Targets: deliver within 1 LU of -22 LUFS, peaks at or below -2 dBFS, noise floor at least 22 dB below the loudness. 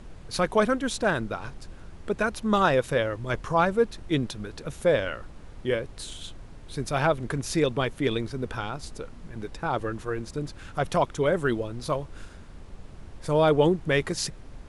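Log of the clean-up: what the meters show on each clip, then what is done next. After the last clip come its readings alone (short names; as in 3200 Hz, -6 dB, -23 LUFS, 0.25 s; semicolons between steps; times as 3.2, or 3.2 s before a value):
noise floor -45 dBFS; noise floor target -49 dBFS; loudness -27.0 LUFS; peak -9.0 dBFS; loudness target -22.0 LUFS
-> noise print and reduce 6 dB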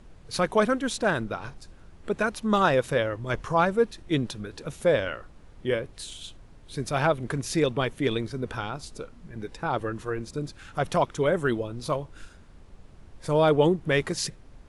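noise floor -51 dBFS; loudness -27.0 LUFS; peak -9.0 dBFS; loudness target -22.0 LUFS
-> gain +5 dB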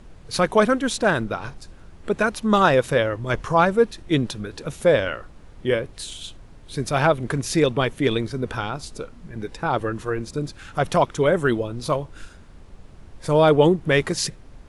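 loudness -22.0 LUFS; peak -4.0 dBFS; noise floor -46 dBFS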